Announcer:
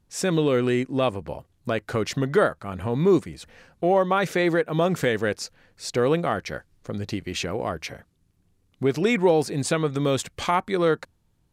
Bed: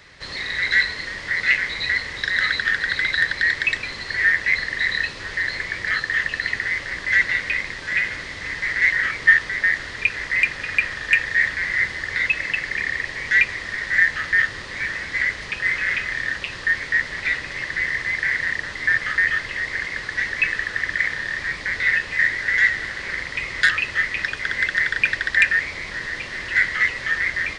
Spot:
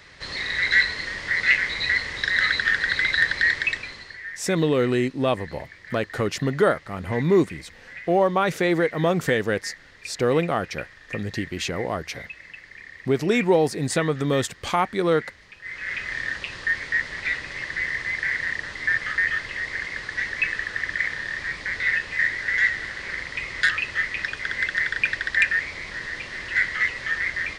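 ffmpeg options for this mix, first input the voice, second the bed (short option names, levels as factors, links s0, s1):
-filter_complex "[0:a]adelay=4250,volume=1.06[s0];[1:a]volume=5.31,afade=t=out:st=3.45:d=0.76:silence=0.125893,afade=t=in:st=15.62:d=0.53:silence=0.177828[s1];[s0][s1]amix=inputs=2:normalize=0"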